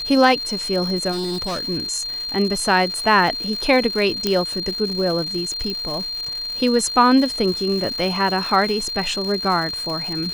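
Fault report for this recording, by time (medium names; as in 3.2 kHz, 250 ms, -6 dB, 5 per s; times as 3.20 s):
crackle 270 per s -27 dBFS
whine 4.2 kHz -25 dBFS
1.11–1.66 s: clipped -21.5 dBFS
4.27 s: pop -6 dBFS
5.70 s: pop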